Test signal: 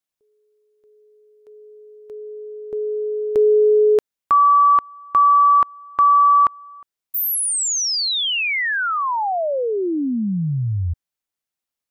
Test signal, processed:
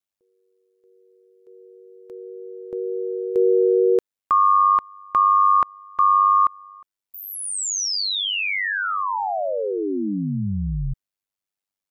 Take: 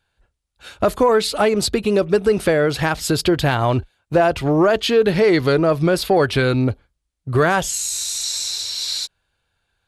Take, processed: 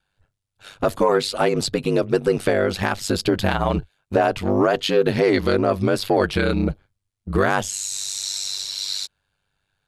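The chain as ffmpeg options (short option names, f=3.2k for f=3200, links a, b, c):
-filter_complex "[0:a]aeval=exprs='val(0)*sin(2*PI*49*n/s)':c=same,acrossover=split=8900[a][b];[b]acompressor=threshold=-38dB:ratio=4:attack=1:release=60[c];[a][c]amix=inputs=2:normalize=0"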